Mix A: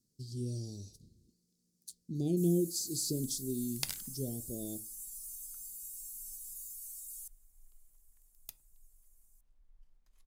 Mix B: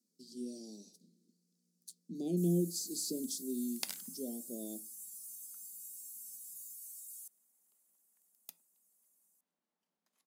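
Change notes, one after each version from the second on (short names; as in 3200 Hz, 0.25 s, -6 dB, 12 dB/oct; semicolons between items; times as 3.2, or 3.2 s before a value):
master: add rippled Chebyshev high-pass 170 Hz, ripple 3 dB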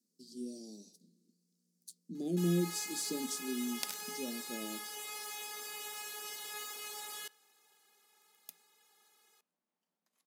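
first sound: remove inverse Chebyshev high-pass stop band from 1900 Hz, stop band 70 dB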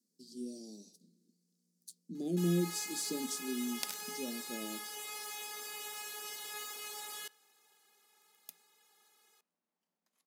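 none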